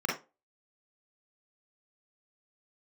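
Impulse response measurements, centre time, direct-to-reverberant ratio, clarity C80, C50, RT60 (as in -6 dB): 36 ms, -3.0 dB, 13.5 dB, 5.0 dB, 0.30 s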